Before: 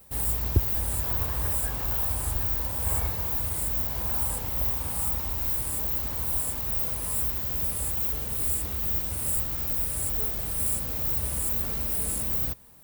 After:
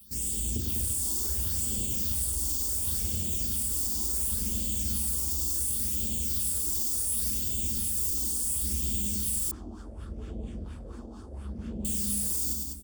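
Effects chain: bell 770 Hz -8 dB 1.4 oct; reverb RT60 0.75 s, pre-delay 5 ms, DRR 5 dB; soft clip -23.5 dBFS, distortion -12 dB; HPF 60 Hz; phaser stages 6, 0.7 Hz, lowest notch 130–1600 Hz; graphic EQ 125/250/1000/2000/4000/8000 Hz -6/+5/-6/-10/+9/+11 dB; limiter -22 dBFS, peak gain reduction 7.5 dB; notch 4000 Hz, Q 6.3; loudspeakers at several distances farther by 35 m -5 dB, 69 m -5 dB; 9.51–11.85 LFO low-pass sine 4.3 Hz 610–1600 Hz

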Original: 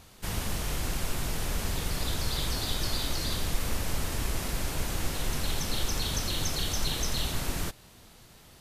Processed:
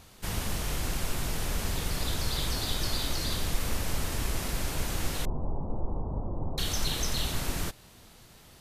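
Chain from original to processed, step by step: 5.25–6.58 steep low-pass 1000 Hz 48 dB/oct

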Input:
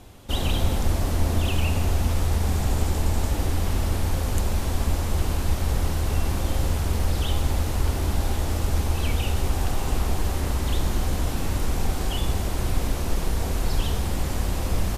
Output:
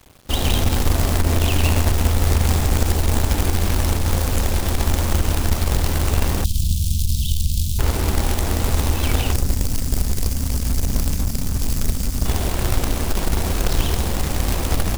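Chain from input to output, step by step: 9.33–12.25 spectral delete 290–4400 Hz; narrowing echo 99 ms, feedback 48%, band-pass 300 Hz, level -5 dB; companded quantiser 4-bit; crossover distortion -43 dBFS; 6.44–7.79 inverse Chebyshev band-stop 350–1900 Hz, stop band 40 dB; core saturation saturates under 52 Hz; gain +5 dB

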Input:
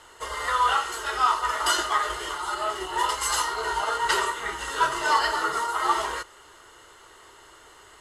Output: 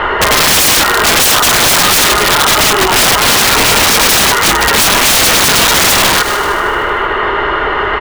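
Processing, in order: LPF 2500 Hz 24 dB/oct; comb 4.9 ms, depth 32%; in parallel at +2 dB: compressor 16:1, threshold -36 dBFS, peak gain reduction 21.5 dB; on the sum: wrapped overs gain 23.5 dB; multi-head echo 76 ms, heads first and second, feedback 58%, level -23 dB; maximiser +33 dB; gain -2 dB

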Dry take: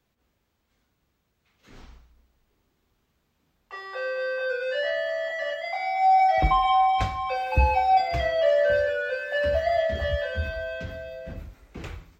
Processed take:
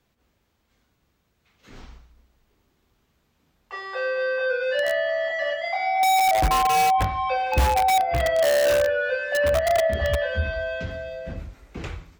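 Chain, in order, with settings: treble ducked by the level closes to 1300 Hz, closed at -18 dBFS; in parallel at -5 dB: wrapped overs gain 17.5 dB

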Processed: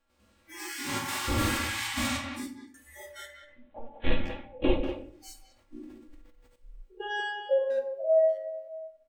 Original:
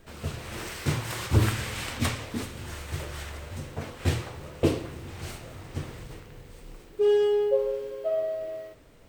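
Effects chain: stepped spectrum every 0.1 s; spectral noise reduction 28 dB; 3.42–4.9 LPC vocoder at 8 kHz pitch kept; low shelf 380 Hz -6 dB; comb 3.6 ms, depth 90%; 2.23–2.74 fade out; speakerphone echo 0.19 s, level -7 dB; shoebox room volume 50 m³, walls mixed, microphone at 0.46 m; 5.47–6.56 sustainer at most 42 dB/s

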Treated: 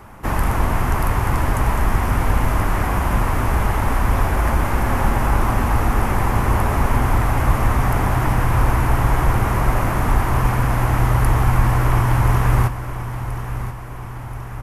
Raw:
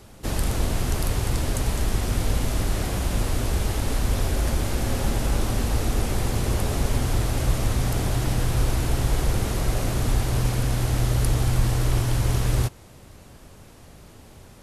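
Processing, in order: graphic EQ 500/1000/2000/4000/8000 Hz -4/+11/+5/-12/-8 dB; feedback echo 1.029 s, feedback 54%, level -11.5 dB; gain +5 dB

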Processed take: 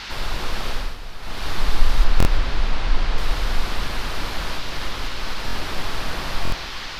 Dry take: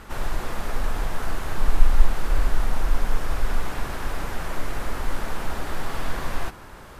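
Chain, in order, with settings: 4.52–5.44 compressor, threshold -22 dBFS, peak gain reduction 7 dB; band noise 880–4900 Hz -35 dBFS; 2.04–3.18 air absorption 78 m; echo with dull and thin repeats by turns 0.167 s, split 1500 Hz, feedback 70%, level -5.5 dB; 0.69–1.48 dip -11 dB, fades 0.28 s; stuck buffer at 2.18/5.46/6.43, samples 1024, times 3

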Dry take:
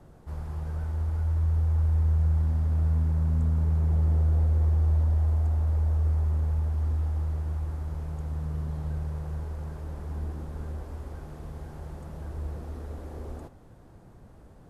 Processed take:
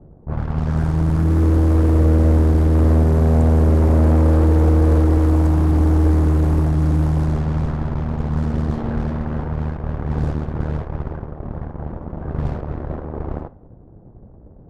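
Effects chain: added harmonics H 8 -9 dB, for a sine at -15.5 dBFS; low-pass opened by the level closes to 480 Hz, open at -20.5 dBFS; gain +8 dB

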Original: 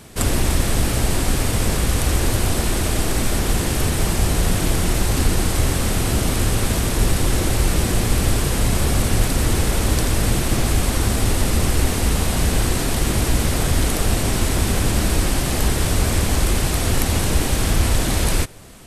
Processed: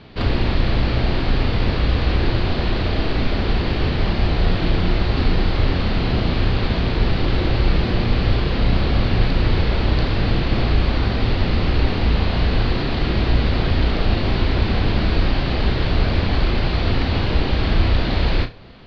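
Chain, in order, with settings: Chebyshev low-pass 4500 Hz, order 5; flutter echo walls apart 5.8 m, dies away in 0.23 s

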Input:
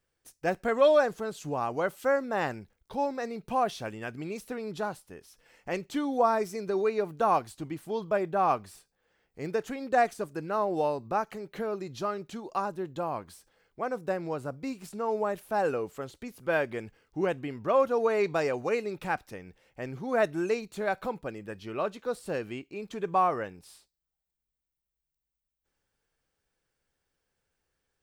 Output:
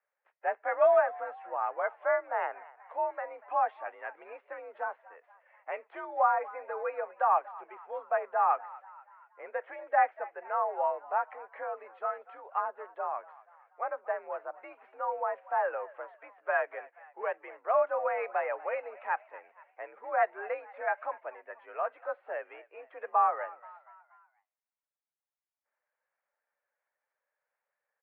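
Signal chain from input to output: bin magnitudes rounded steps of 15 dB; mistuned SSB +59 Hz 520–2100 Hz; frequency-shifting echo 0.239 s, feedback 51%, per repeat +55 Hz, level -20 dB

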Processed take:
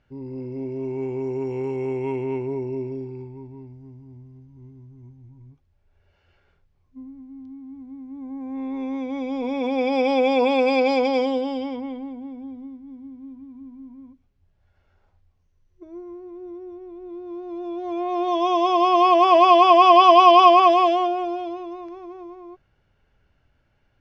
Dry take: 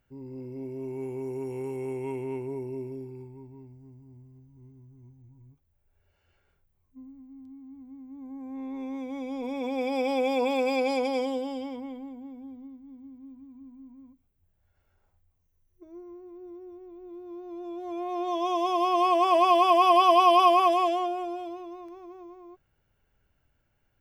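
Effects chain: LPF 5500 Hz 24 dB/oct; gain +7 dB

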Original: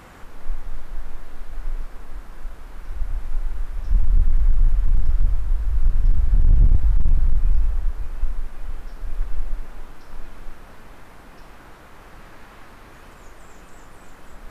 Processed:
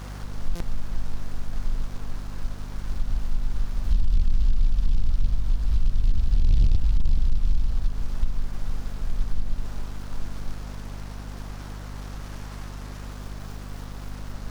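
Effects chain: compressor 2.5:1, threshold -19 dBFS, peak gain reduction 6 dB; hum 50 Hz, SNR 16 dB; stuck buffer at 0.55, samples 256, times 8; noise-modulated delay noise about 3600 Hz, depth 0.07 ms; gain +1.5 dB

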